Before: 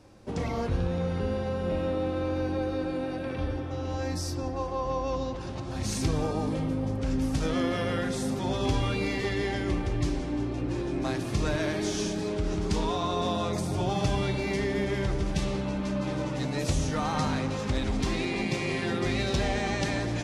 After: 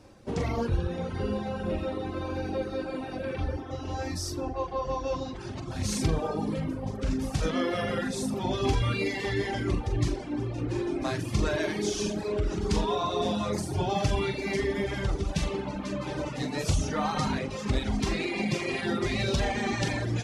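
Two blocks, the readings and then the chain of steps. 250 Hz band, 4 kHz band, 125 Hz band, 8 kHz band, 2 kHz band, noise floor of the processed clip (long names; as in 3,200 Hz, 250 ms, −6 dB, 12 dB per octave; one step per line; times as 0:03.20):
−1.5 dB, 0.0 dB, −0.5 dB, +0.5 dB, +0.5 dB, −37 dBFS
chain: flutter between parallel walls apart 7.4 metres, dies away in 0.38 s
reverb reduction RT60 1.2 s
level +1.5 dB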